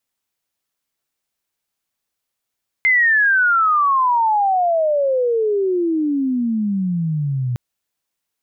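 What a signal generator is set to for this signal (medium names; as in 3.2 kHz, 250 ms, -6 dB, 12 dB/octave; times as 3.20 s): sweep logarithmic 2.1 kHz -> 120 Hz -11 dBFS -> -18 dBFS 4.71 s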